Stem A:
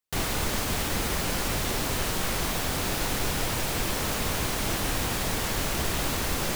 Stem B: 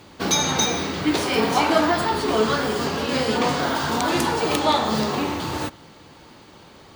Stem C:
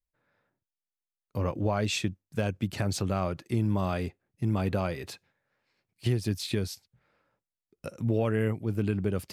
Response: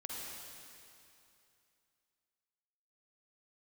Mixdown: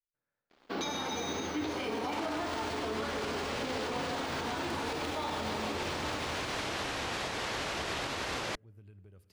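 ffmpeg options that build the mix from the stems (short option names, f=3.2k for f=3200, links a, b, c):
-filter_complex "[0:a]adelay=2000,volume=1dB[a];[1:a]equalizer=f=220:t=o:w=2.5:g=5.5,aeval=exprs='sgn(val(0))*max(abs(val(0))-0.00841,0)':c=same,adelay=500,volume=-10.5dB,asplit=2[b][c];[c]volume=-5.5dB[d];[2:a]acompressor=threshold=-42dB:ratio=2.5,volume=-18.5dB,asplit=2[e][f];[f]volume=-10dB[g];[a][b]amix=inputs=2:normalize=0,highpass=240,lowpass=4.7k,alimiter=limit=-24dB:level=0:latency=1:release=256,volume=0dB[h];[3:a]atrim=start_sample=2205[i];[d][g]amix=inputs=2:normalize=0[j];[j][i]afir=irnorm=-1:irlink=0[k];[e][h][k]amix=inputs=3:normalize=0,asubboost=boost=6.5:cutoff=75,alimiter=level_in=2dB:limit=-24dB:level=0:latency=1,volume=-2dB"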